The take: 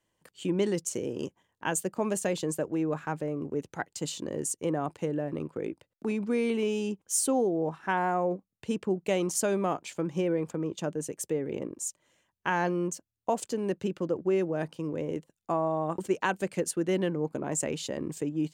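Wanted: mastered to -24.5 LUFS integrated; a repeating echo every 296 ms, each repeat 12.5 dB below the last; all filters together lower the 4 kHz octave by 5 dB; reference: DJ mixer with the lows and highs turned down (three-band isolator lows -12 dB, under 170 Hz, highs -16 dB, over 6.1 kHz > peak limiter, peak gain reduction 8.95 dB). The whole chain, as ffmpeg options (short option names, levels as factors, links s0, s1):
-filter_complex "[0:a]acrossover=split=170 6100:gain=0.251 1 0.158[s0][s1][s2];[s0][s1][s2]amix=inputs=3:normalize=0,equalizer=f=4000:t=o:g=-6,aecho=1:1:296|592|888:0.237|0.0569|0.0137,volume=2.99,alimiter=limit=0.211:level=0:latency=1"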